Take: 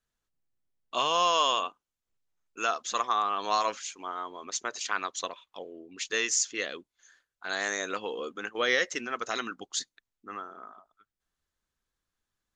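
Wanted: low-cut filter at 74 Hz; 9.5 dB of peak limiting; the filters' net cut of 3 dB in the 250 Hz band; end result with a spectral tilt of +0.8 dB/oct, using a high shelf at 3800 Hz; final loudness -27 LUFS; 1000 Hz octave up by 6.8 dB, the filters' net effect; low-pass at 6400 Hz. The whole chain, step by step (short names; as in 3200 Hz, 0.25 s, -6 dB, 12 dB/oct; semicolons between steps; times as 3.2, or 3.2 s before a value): HPF 74 Hz; LPF 6400 Hz; bell 250 Hz -5 dB; bell 1000 Hz +7.5 dB; high shelf 3800 Hz +6 dB; gain +3 dB; limiter -14 dBFS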